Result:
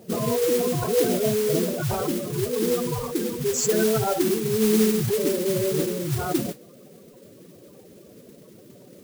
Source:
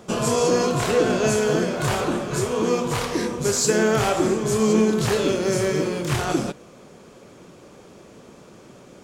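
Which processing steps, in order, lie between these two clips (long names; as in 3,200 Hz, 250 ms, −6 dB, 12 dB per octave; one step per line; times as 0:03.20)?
gate on every frequency bin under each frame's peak −10 dB strong
noise that follows the level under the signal 10 dB
level −1 dB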